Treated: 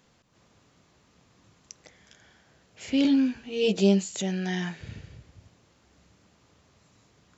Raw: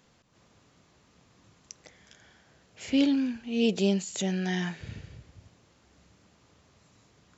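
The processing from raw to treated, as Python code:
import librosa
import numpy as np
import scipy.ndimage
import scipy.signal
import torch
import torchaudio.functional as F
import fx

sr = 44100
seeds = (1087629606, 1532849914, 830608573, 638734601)

y = fx.doubler(x, sr, ms=15.0, db=-2, at=(3.03, 4.08))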